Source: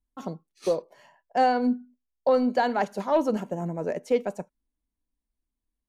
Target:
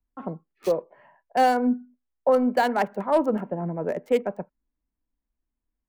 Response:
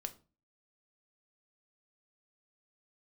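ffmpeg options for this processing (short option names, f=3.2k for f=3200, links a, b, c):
-filter_complex "[0:a]equalizer=f=2.3k:t=o:w=1.2:g=3.5,acrossover=split=230|1000|2000[a][b][c][d];[d]acrusher=bits=5:mix=0:aa=0.5[e];[a][b][c][e]amix=inputs=4:normalize=0,volume=1.5dB"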